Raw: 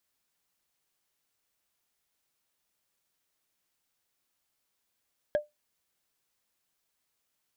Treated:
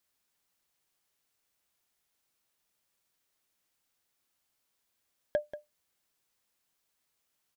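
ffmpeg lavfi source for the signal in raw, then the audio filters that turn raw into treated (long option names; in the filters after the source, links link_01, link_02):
-f lavfi -i "aevalsrc='0.112*pow(10,-3*t/0.17)*sin(2*PI*596*t)+0.0335*pow(10,-3*t/0.05)*sin(2*PI*1643.2*t)+0.01*pow(10,-3*t/0.022)*sin(2*PI*3220.8*t)+0.00299*pow(10,-3*t/0.012)*sin(2*PI*5324.1*t)+0.000891*pow(10,-3*t/0.008)*sin(2*PI*7950.6*t)':duration=0.45:sample_rate=44100"
-af "aecho=1:1:185:0.224"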